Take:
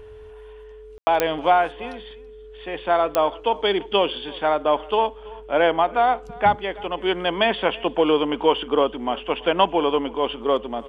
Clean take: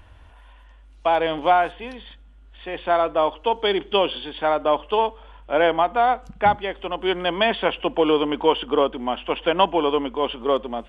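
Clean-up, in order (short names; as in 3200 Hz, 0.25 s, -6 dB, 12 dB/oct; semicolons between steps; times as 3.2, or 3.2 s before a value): de-click; notch 430 Hz, Q 30; room tone fill 0.98–1.07; inverse comb 0.331 s -22 dB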